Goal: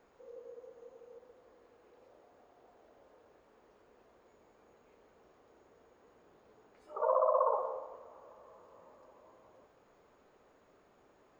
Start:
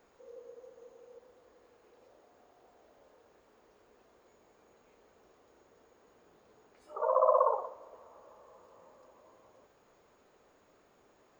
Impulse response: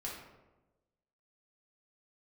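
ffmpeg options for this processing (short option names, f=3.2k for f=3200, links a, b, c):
-filter_complex "[0:a]asplit=2[a][b];[1:a]atrim=start_sample=2205,adelay=140[c];[b][c]afir=irnorm=-1:irlink=0,volume=-12dB[d];[a][d]amix=inputs=2:normalize=0,alimiter=limit=-17.5dB:level=0:latency=1:release=197,highshelf=f=4.2k:g=-8"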